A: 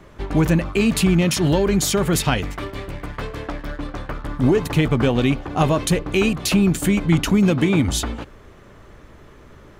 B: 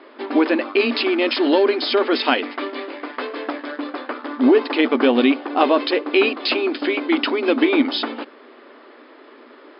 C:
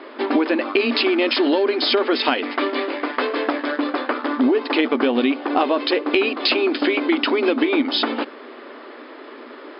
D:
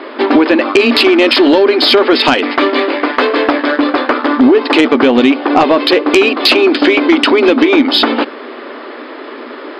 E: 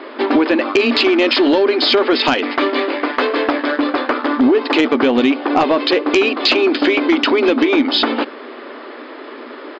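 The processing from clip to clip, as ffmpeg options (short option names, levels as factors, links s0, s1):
-af "afftfilt=real='re*between(b*sr/4096,230,5200)':imag='im*between(b*sr/4096,230,5200)':win_size=4096:overlap=0.75,volume=1.58"
-af "acompressor=threshold=0.0794:ratio=6,volume=2.11"
-af "aeval=exprs='0.891*sin(PI/2*2.24*val(0)/0.891)':c=same"
-af "aresample=16000,aresample=44100,volume=0.562"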